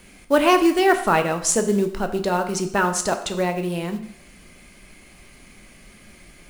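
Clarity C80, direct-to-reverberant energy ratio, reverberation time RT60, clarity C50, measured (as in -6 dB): 13.5 dB, 6.0 dB, 0.70 s, 10.5 dB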